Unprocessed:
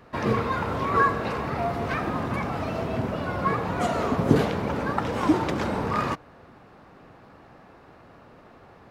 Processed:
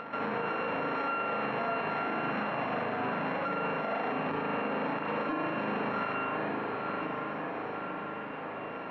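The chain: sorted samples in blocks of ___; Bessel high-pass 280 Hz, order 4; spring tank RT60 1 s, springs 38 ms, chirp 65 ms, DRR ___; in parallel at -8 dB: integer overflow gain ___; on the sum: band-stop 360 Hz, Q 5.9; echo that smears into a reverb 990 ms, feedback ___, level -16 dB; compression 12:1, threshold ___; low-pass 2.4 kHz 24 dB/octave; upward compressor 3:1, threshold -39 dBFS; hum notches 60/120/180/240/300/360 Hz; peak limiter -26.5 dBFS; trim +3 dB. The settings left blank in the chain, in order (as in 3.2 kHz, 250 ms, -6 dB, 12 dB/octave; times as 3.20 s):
32 samples, -1 dB, 8.5 dB, 68%, -26 dBFS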